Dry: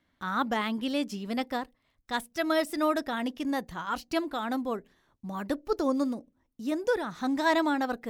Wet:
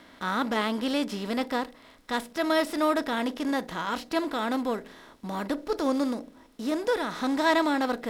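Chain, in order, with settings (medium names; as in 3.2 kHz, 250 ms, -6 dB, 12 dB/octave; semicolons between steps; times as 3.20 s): spectral levelling over time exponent 0.6; peaking EQ 5.4 kHz +3.5 dB 2.4 oct; harmonic-percussive split percussive -7 dB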